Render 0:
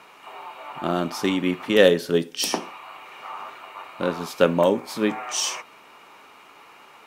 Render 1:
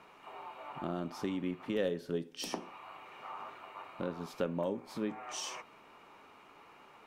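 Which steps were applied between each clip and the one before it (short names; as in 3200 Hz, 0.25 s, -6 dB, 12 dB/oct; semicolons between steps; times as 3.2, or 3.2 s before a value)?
tilt -2 dB/oct; compressor 2:1, threshold -30 dBFS, peak gain reduction 12 dB; gain -8.5 dB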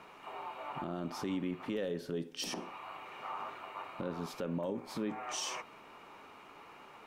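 limiter -31 dBFS, peak gain reduction 10.5 dB; gain +3.5 dB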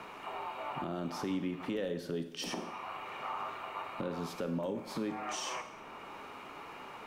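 Schroeder reverb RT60 0.7 s, combs from 28 ms, DRR 10.5 dB; three-band squash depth 40%; gain +1 dB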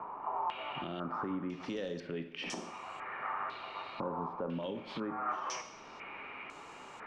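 stepped low-pass 2 Hz 980–7500 Hz; gain -3 dB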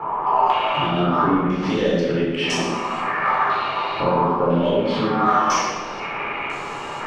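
in parallel at -5 dB: soft clip -34.5 dBFS, distortion -13 dB; on the sum: shoebox room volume 810 m³, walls mixed, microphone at 4.1 m; gain +6.5 dB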